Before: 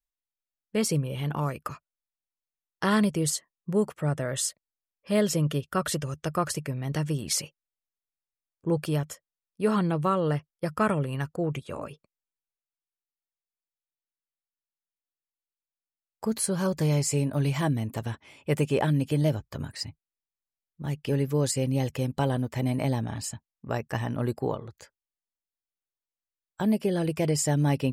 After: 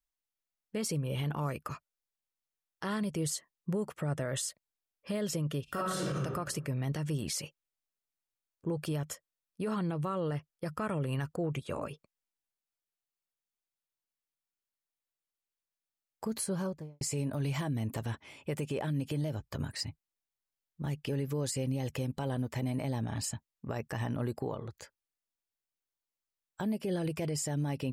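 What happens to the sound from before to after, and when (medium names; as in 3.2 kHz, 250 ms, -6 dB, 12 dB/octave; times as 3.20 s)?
5.64–6.17 s: reverb throw, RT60 0.93 s, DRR -9.5 dB
16.26–17.01 s: studio fade out
whole clip: compression, threshold -27 dBFS; peak limiter -25.5 dBFS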